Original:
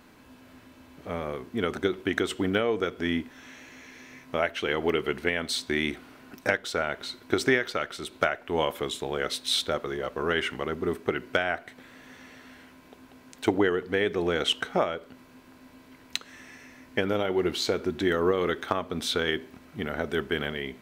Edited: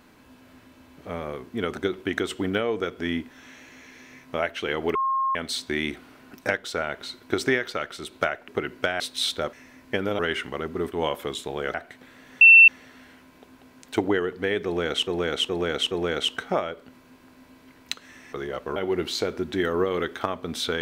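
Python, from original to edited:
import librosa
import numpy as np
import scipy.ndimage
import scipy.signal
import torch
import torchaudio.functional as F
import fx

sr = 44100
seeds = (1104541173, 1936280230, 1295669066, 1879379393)

y = fx.edit(x, sr, fx.bleep(start_s=4.95, length_s=0.4, hz=1070.0, db=-21.0),
    fx.swap(start_s=8.48, length_s=0.82, other_s=10.99, other_length_s=0.52),
    fx.swap(start_s=9.83, length_s=0.43, other_s=16.57, other_length_s=0.66),
    fx.insert_tone(at_s=12.18, length_s=0.27, hz=2690.0, db=-7.5),
    fx.repeat(start_s=14.15, length_s=0.42, count=4), tone=tone)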